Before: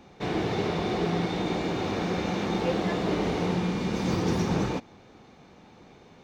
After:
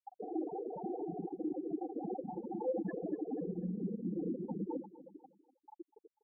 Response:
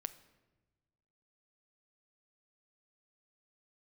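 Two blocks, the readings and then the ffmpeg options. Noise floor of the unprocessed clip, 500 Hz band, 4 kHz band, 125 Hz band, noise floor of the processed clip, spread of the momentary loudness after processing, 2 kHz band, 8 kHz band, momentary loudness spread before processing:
-53 dBFS, -10.5 dB, under -40 dB, -16.5 dB, -85 dBFS, 18 LU, -28.0 dB, under -35 dB, 3 LU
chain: -filter_complex "[0:a]asplit=2[a][b];[b]equalizer=f=3.8k:w=0.95:g=9.5[c];[1:a]atrim=start_sample=2205,adelay=72[d];[c][d]afir=irnorm=-1:irlink=0,volume=-8dB[e];[a][e]amix=inputs=2:normalize=0,acompressor=threshold=-38dB:ratio=16,asplit=2[f][g];[g]highpass=f=720:p=1,volume=27dB,asoftclip=type=tanh:threshold=-30.5dB[h];[f][h]amix=inputs=2:normalize=0,lowpass=f=5.6k:p=1,volume=-6dB,afwtdn=0.00794,afftfilt=real='re*gte(hypot(re,im),0.0708)':imag='im*gte(hypot(re,im),0.0708)':win_size=1024:overlap=0.75,tiltshelf=f=930:g=5.5,aecho=1:1:3.6:0.5,aecho=1:1:245|490|735:0.15|0.0569|0.0216,volume=1.5dB"

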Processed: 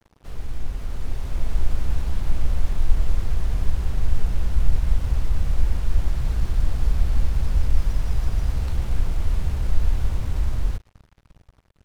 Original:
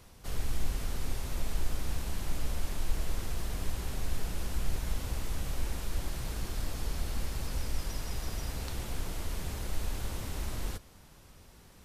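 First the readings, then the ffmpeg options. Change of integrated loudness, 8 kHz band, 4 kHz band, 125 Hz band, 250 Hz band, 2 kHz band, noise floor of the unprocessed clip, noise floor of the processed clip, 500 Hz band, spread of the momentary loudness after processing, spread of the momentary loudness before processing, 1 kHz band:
+11.5 dB, -4.0 dB, -0.5 dB, +12.5 dB, +5.5 dB, +2.0 dB, -56 dBFS, -62 dBFS, +3.5 dB, 8 LU, 3 LU, +3.5 dB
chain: -af "lowpass=f=1.7k:p=1,acrusher=bits=7:mix=0:aa=0.5,asubboost=boost=2.5:cutoff=160,dynaudnorm=f=180:g=13:m=6dB"

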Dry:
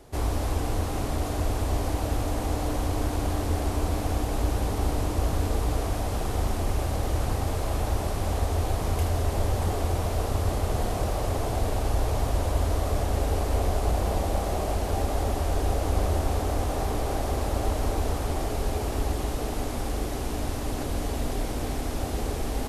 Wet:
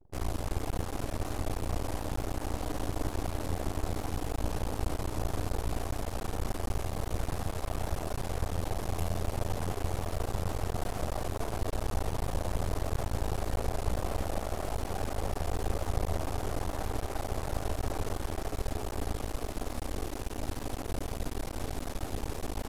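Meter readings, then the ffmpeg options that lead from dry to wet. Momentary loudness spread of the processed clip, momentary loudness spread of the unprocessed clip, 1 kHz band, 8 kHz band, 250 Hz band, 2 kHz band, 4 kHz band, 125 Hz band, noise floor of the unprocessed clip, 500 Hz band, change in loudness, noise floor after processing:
4 LU, 4 LU, -7.0 dB, -6.0 dB, -6.5 dB, -5.5 dB, -6.0 dB, -7.5 dB, -30 dBFS, -7.0 dB, -7.5 dB, -40 dBFS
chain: -af "aeval=exprs='max(val(0),0)':c=same,anlmdn=0.01,volume=-3dB"

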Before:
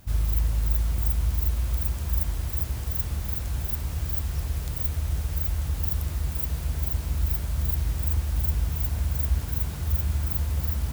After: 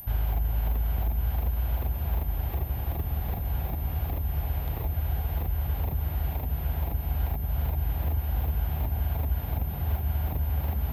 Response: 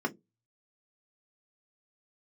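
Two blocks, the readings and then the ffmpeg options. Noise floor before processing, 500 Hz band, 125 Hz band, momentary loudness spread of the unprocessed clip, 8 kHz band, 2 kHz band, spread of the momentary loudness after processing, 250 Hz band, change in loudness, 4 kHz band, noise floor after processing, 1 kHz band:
-33 dBFS, +3.5 dB, -1.0 dB, 3 LU, under -20 dB, -1.5 dB, 2 LU, 0.0 dB, -2.5 dB, -6.5 dB, -33 dBFS, +5.0 dB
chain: -filter_complex "[0:a]asplit=2[a][b];[b]acrusher=samples=29:mix=1:aa=0.000001,volume=-6.5dB[c];[a][c]amix=inputs=2:normalize=0,highshelf=f=4.1k:t=q:w=1.5:g=-8,acrossover=split=340[d][e];[e]alimiter=level_in=0.5dB:limit=-24dB:level=0:latency=1:release=311,volume=-0.5dB[f];[d][f]amix=inputs=2:normalize=0,aeval=exprs='val(0)+0.0447*sin(2*PI*13000*n/s)':c=same,equalizer=f=770:w=2.5:g=11.5,acrusher=bits=9:mix=0:aa=0.000001,acrossover=split=470|5800[g][h][i];[g]acompressor=threshold=-21dB:ratio=4[j];[h]acompressor=threshold=-39dB:ratio=4[k];[i]acompressor=threshold=-45dB:ratio=4[l];[j][k][l]amix=inputs=3:normalize=0,volume=-2.5dB"

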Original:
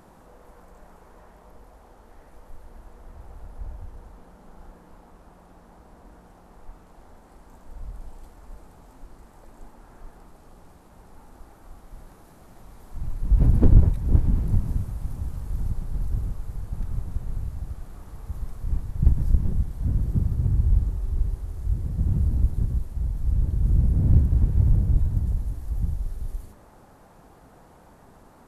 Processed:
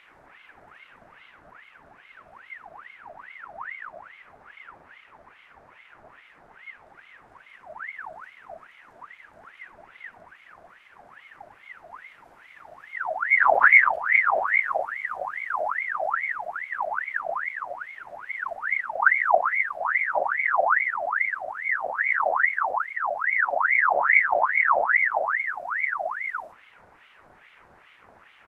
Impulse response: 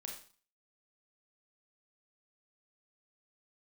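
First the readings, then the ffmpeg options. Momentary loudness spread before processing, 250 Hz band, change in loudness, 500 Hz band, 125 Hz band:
21 LU, under -20 dB, +3.0 dB, +14.0 dB, under -40 dB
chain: -filter_complex "[0:a]aemphasis=mode=reproduction:type=50kf,asplit=2[a][b];[b]adelay=36,volume=-10.5dB[c];[a][c]amix=inputs=2:normalize=0,aeval=exprs='val(0)*sin(2*PI*1400*n/s+1400*0.55/2.4*sin(2*PI*2.4*n/s))':c=same"

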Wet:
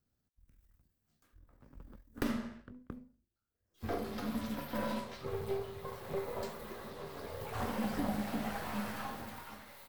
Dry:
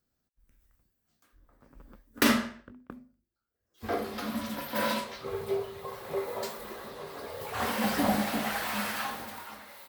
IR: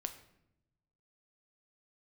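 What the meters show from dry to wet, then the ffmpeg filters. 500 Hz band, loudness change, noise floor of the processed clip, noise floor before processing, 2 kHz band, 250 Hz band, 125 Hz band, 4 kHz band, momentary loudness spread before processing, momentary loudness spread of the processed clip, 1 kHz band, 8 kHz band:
-6.0 dB, -8.0 dB, -84 dBFS, -83 dBFS, -11.5 dB, -6.0 dB, -1.0 dB, -12.5 dB, 16 LU, 14 LU, -8.5 dB, -13.0 dB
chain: -filter_complex "[0:a]aeval=exprs='if(lt(val(0),0),0.447*val(0),val(0))':c=same,equalizer=f=90:w=0.41:g=8.5,acrossover=split=1200|3300[a][b][c];[a]acompressor=threshold=-29dB:ratio=4[d];[b]acompressor=threshold=-47dB:ratio=4[e];[c]acompressor=threshold=-48dB:ratio=4[f];[d][e][f]amix=inputs=3:normalize=0,volume=-3dB"

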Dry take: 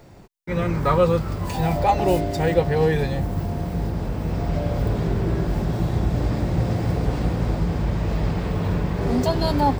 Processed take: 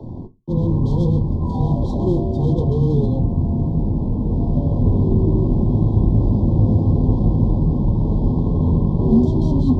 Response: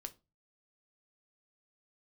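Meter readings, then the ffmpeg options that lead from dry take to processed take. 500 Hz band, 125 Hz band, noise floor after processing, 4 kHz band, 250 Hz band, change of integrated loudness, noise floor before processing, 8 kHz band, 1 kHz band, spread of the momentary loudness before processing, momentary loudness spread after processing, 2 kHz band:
-2.0 dB, +6.5 dB, -24 dBFS, under -10 dB, +6.5 dB, +4.5 dB, -31 dBFS, n/a, -9.0 dB, 7 LU, 5 LU, under -40 dB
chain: -filter_complex "[0:a]acrossover=split=400[a][b];[b]aeval=exprs='0.0531*(abs(mod(val(0)/0.0531+3,4)-2)-1)':c=same[c];[a][c]amix=inputs=2:normalize=0[d];[1:a]atrim=start_sample=2205,afade=t=out:st=0.26:d=0.01,atrim=end_sample=11907[e];[d][e]afir=irnorm=-1:irlink=0,afreqshift=-13,adynamicsmooth=sensitivity=1.5:basefreq=1.6k,afftfilt=real='re*(1-between(b*sr/4096,1100,3100))':imag='im*(1-between(b*sr/4096,1100,3100))':win_size=4096:overlap=0.75,areverse,acompressor=mode=upward:threshold=-29dB:ratio=2.5,areverse,equalizer=f=100:t=o:w=0.67:g=7,equalizer=f=250:t=o:w=0.67:g=9,equalizer=f=630:t=o:w=0.67:g=-5,equalizer=f=2.5k:t=o:w=0.67:g=-10,volume=6.5dB"

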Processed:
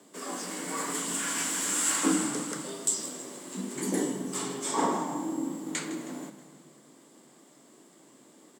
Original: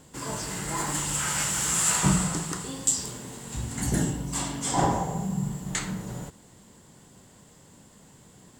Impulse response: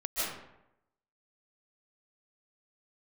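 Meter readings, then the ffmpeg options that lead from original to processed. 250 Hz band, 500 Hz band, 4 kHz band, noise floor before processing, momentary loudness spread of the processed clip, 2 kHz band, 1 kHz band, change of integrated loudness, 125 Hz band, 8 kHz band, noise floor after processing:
-1.0 dB, +0.5 dB, -3.0 dB, -54 dBFS, 12 LU, -2.5 dB, -3.0 dB, -3.5 dB, -15.0 dB, -3.5 dB, -58 dBFS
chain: -filter_complex "[0:a]asplit=6[a][b][c][d][e][f];[b]adelay=159,afreqshift=-51,volume=-14dB[g];[c]adelay=318,afreqshift=-102,volume=-20dB[h];[d]adelay=477,afreqshift=-153,volume=-26dB[i];[e]adelay=636,afreqshift=-204,volume=-32.1dB[j];[f]adelay=795,afreqshift=-255,volume=-38.1dB[k];[a][g][h][i][j][k]amix=inputs=6:normalize=0,asplit=2[l][m];[1:a]atrim=start_sample=2205,asetrate=26019,aresample=44100[n];[m][n]afir=irnorm=-1:irlink=0,volume=-28dB[o];[l][o]amix=inputs=2:normalize=0,afreqshift=130,volume=-4dB"

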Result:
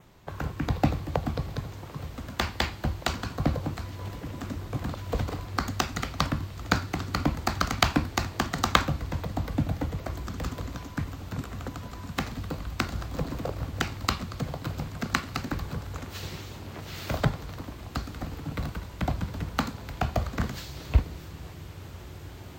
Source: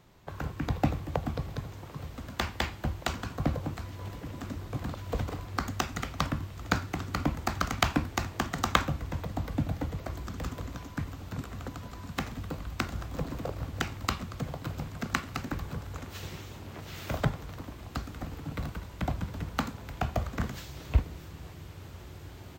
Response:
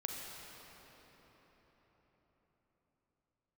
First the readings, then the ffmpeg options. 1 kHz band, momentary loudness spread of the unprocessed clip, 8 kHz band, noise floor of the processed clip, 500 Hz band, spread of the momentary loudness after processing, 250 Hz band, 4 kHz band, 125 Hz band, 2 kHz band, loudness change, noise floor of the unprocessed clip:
+3.0 dB, 12 LU, +3.5 dB, -43 dBFS, +3.0 dB, 12 LU, +3.0 dB, +4.5 dB, +3.0 dB, +3.0 dB, +3.0 dB, -46 dBFS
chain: -af "adynamicequalizer=threshold=0.00158:dfrequency=4400:dqfactor=3.5:tfrequency=4400:tqfactor=3.5:attack=5:release=100:ratio=0.375:range=2.5:mode=boostabove:tftype=bell,areverse,acompressor=mode=upward:threshold=-47dB:ratio=2.5,areverse,volume=3dB"

